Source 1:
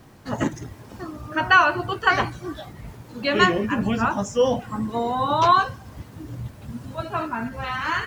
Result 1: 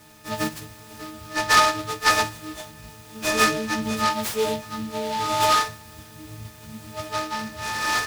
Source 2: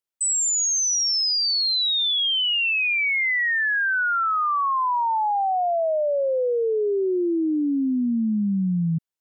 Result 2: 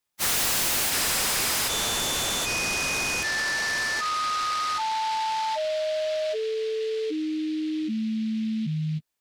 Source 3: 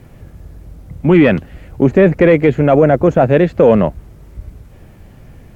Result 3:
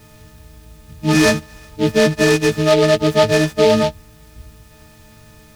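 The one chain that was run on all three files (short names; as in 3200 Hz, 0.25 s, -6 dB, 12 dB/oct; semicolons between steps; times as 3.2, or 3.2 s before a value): frequency quantiser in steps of 6 st; noise-modulated delay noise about 3000 Hz, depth 0.058 ms; gain -5 dB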